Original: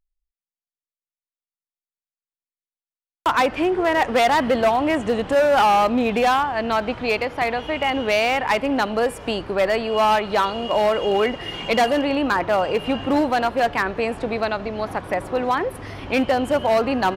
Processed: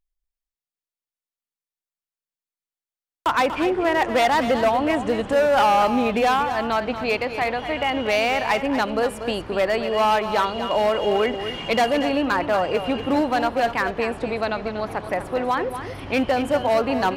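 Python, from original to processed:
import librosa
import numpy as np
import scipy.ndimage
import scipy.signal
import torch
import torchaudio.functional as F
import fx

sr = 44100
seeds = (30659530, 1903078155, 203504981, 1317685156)

y = x + 10.0 ** (-10.0 / 20.0) * np.pad(x, (int(239 * sr / 1000.0), 0))[:len(x)]
y = y * 10.0 ** (-1.5 / 20.0)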